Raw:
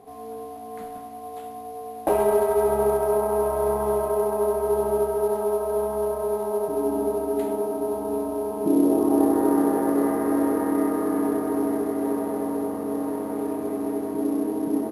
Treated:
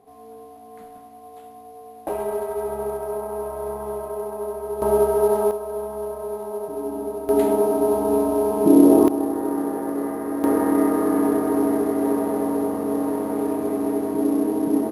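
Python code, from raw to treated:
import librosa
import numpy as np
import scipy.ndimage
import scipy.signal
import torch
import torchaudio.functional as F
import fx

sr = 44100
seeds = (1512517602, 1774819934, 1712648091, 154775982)

y = fx.gain(x, sr, db=fx.steps((0.0, -6.0), (4.82, 5.0), (5.51, -4.0), (7.29, 7.0), (9.08, -4.0), (10.44, 4.0)))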